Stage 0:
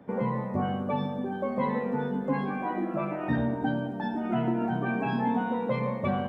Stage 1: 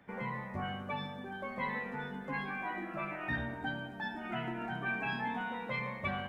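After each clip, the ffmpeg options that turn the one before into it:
ffmpeg -i in.wav -af "equalizer=frequency=125:width_type=o:width=1:gain=-8,equalizer=frequency=250:width_type=o:width=1:gain=-11,equalizer=frequency=500:width_type=o:width=1:gain=-11,equalizer=frequency=1000:width_type=o:width=1:gain=-5,equalizer=frequency=2000:width_type=o:width=1:gain=5" out.wav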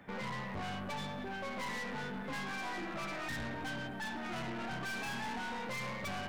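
ffmpeg -i in.wav -af "aeval=exprs='(tanh(178*val(0)+0.4)-tanh(0.4))/178':channel_layout=same,volume=7dB" out.wav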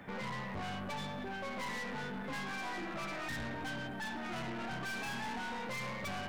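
ffmpeg -i in.wav -af "alimiter=level_in=16.5dB:limit=-24dB:level=0:latency=1,volume=-16.5dB,volume=5dB" out.wav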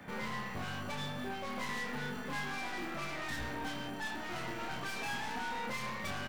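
ffmpeg -i in.wav -filter_complex "[0:a]acrossover=split=350|2300[link_01][link_02][link_03];[link_01]acrusher=samples=30:mix=1:aa=0.000001[link_04];[link_04][link_02][link_03]amix=inputs=3:normalize=0,asplit=2[link_05][link_06];[link_06]adelay=28,volume=-3.5dB[link_07];[link_05][link_07]amix=inputs=2:normalize=0" out.wav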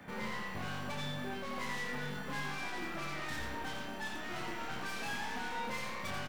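ffmpeg -i in.wav -af "aecho=1:1:88:0.562,volume=-1.5dB" out.wav

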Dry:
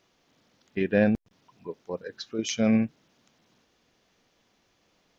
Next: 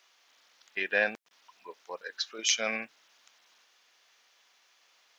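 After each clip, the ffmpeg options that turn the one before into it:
ffmpeg -i in.wav -af "highpass=1100,volume=6dB" out.wav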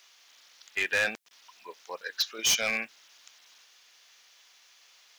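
ffmpeg -i in.wav -af "highshelf=frequency=2100:gain=9.5,volume=20.5dB,asoftclip=hard,volume=-20.5dB" out.wav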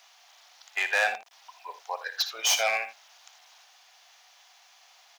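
ffmpeg -i in.wav -af "highpass=frequency=740:width_type=q:width=4.9,aecho=1:1:56|79:0.211|0.2" out.wav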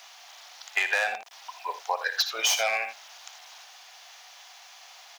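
ffmpeg -i in.wav -af "acompressor=threshold=-30dB:ratio=10,volume=8dB" out.wav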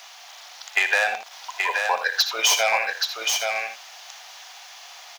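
ffmpeg -i in.wav -af "aecho=1:1:827:0.596,volume=5dB" out.wav

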